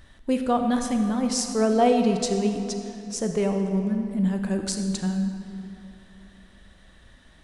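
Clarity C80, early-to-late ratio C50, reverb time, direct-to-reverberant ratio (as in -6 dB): 6.5 dB, 5.5 dB, 2.9 s, 5.0 dB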